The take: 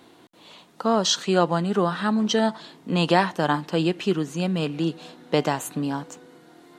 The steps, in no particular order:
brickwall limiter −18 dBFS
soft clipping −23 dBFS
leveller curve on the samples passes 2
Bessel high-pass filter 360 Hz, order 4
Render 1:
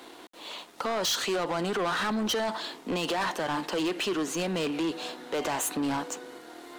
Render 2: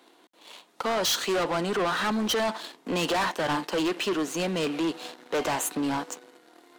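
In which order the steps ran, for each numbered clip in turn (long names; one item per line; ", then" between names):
brickwall limiter, then Bessel high-pass filter, then soft clipping, then leveller curve on the samples
leveller curve on the samples, then Bessel high-pass filter, then soft clipping, then brickwall limiter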